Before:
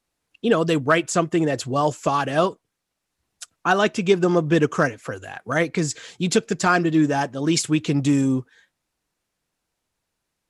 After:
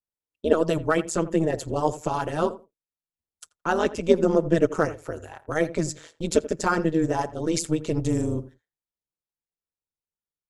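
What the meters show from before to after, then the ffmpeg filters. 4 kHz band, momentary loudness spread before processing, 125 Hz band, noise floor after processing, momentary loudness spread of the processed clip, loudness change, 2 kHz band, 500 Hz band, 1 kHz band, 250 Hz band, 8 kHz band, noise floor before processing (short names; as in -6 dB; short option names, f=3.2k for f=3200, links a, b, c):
-8.5 dB, 8 LU, -4.5 dB, under -85 dBFS, 10 LU, -4.0 dB, -8.0 dB, -1.5 dB, -5.0 dB, -4.5 dB, -4.5 dB, -80 dBFS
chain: -filter_complex "[0:a]agate=range=-20dB:threshold=-39dB:ratio=16:detection=peak,equalizer=f=2.7k:w=0.55:g=-8,aecho=1:1:2.2:0.55,tremolo=f=160:d=0.919,asplit=2[a][b];[b]adelay=84,lowpass=f=1.4k:p=1,volume=-15dB,asplit=2[c][d];[d]adelay=84,lowpass=f=1.4k:p=1,volume=0.16[e];[a][c][e]amix=inputs=3:normalize=0,volume=1dB"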